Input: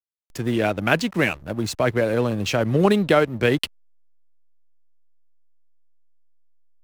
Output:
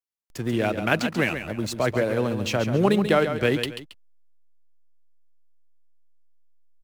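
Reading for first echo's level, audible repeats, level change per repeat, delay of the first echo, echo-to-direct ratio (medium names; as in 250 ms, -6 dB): -9.0 dB, 2, -9.5 dB, 137 ms, -8.5 dB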